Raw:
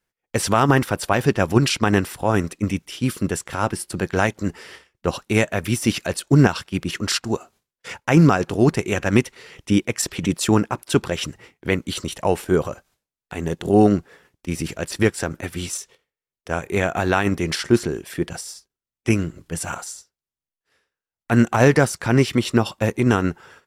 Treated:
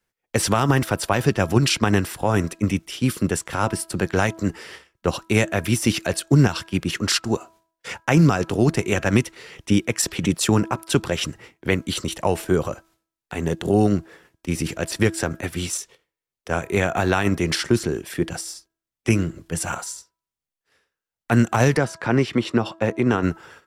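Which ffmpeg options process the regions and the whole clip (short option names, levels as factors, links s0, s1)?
-filter_complex "[0:a]asettb=1/sr,asplit=3[s0][s1][s2];[s0]atrim=end=21.774[s3];[s1]atrim=start=21.77:end=23.23,asetpts=PTS-STARTPTS,afade=t=in:d=0.004:c=qsin,afade=t=out:st=1.456:d=0.004:c=qsin,highpass=f=210:p=1,aemphasis=mode=reproduction:type=75fm[s4];[s2]atrim=start=23.226[s5];[s3][s4]acrossfade=d=0.004:c1=hsin:c2=qsin[s6];[s6][s5]acrossfade=d=0.004:c1=qsin:c2=hsin,bandreject=f=327.5:t=h:w=4,bandreject=f=655:t=h:w=4,bandreject=f=982.5:t=h:w=4,bandreject=f=1310:t=h:w=4,bandreject=f=1637.5:t=h:w=4,acrossover=split=150|3000[s7][s8][s9];[s8]acompressor=threshold=0.141:ratio=6[s10];[s7][s10][s9]amix=inputs=3:normalize=0,volume=1.19"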